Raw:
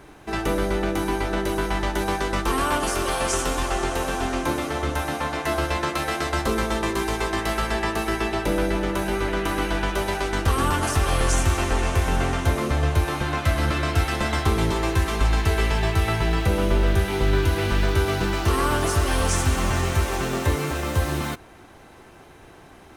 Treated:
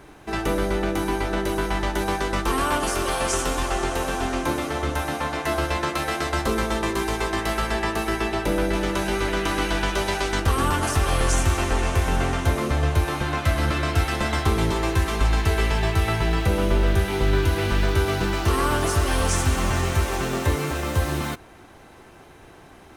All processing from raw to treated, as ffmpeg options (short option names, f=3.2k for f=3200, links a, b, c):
-filter_complex "[0:a]asettb=1/sr,asplit=3[a][b][c];[a]atrim=end=8.734[d];[b]atrim=start=8.73:end=10.4,asetpts=PTS-STARTPTS,afade=t=in:d=0.004:c=qsin,afade=t=out:st=1.666:d=0.004:c=qsin,highshelf=f=3.4k:g=8,acrossover=split=7900[e][f];[f]acompressor=threshold=-46dB:ratio=4:attack=1:release=60[g];[e][g]amix=inputs=2:normalize=0[h];[c]atrim=start=10.396[i];[d][h]acrossfade=d=0.004:c1=hsin:c2=qsin[j];[j][i]acrossfade=d=0.004:c1=qsin:c2=hsin"